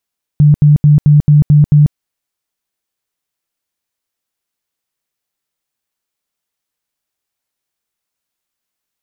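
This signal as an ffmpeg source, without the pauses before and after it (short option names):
-f lavfi -i "aevalsrc='0.708*sin(2*PI*148*mod(t,0.22))*lt(mod(t,0.22),21/148)':d=1.54:s=44100"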